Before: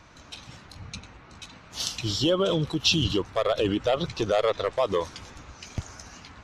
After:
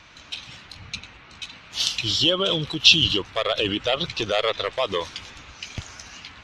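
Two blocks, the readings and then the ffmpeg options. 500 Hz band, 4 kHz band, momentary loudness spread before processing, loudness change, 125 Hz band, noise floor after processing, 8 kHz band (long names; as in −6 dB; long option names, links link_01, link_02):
−1.0 dB, +9.5 dB, 21 LU, +4.5 dB, −2.0 dB, −48 dBFS, +3.0 dB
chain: -af "equalizer=frequency=3000:width=0.75:gain=12.5,volume=-2dB"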